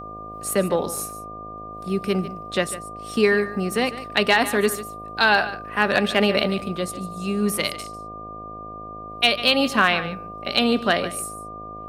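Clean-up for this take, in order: clip repair -6 dBFS; de-hum 53.2 Hz, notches 14; band-stop 1.2 kHz, Q 30; inverse comb 147 ms -14.5 dB

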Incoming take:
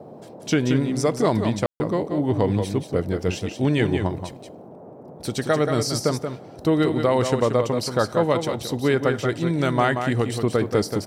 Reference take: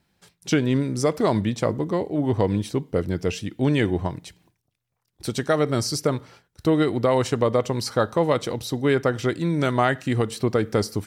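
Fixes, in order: room tone fill 1.66–1.80 s; noise print and reduce 24 dB; inverse comb 180 ms -7 dB

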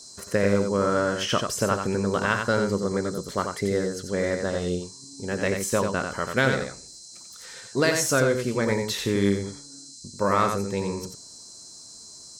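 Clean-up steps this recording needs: band-stop 4.1 kHz, Q 30; noise print and reduce 25 dB; inverse comb 90 ms -5.5 dB

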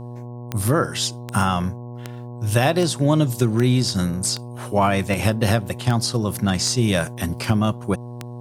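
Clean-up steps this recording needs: de-click; de-hum 121 Hz, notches 9

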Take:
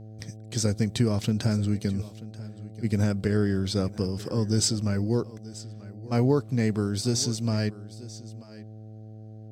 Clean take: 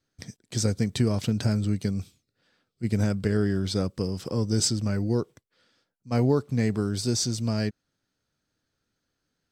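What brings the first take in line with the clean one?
de-hum 108.6 Hz, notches 7; inverse comb 935 ms -18 dB

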